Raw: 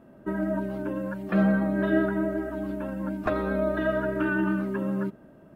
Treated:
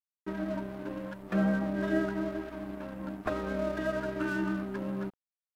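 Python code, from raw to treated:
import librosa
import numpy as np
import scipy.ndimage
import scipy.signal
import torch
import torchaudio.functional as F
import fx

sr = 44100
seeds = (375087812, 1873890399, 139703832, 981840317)

y = np.sign(x) * np.maximum(np.abs(x) - 10.0 ** (-39.0 / 20.0), 0.0)
y = y * 10.0 ** (-4.5 / 20.0)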